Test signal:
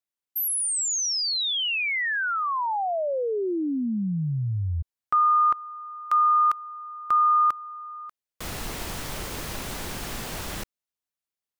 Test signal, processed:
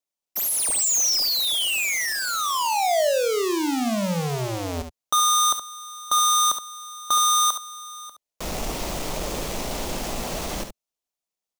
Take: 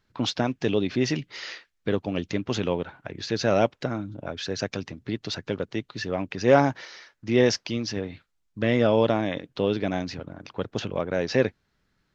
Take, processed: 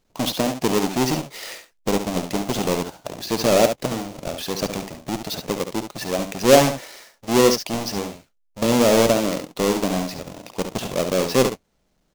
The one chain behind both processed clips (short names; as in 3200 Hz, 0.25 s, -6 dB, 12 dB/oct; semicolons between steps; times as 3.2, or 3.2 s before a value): half-waves squared off; fifteen-band EQ 100 Hz -11 dB, 630 Hz +5 dB, 1600 Hz -6 dB, 6300 Hz +4 dB; early reflections 54 ms -16.5 dB, 70 ms -8.5 dB; gain -1 dB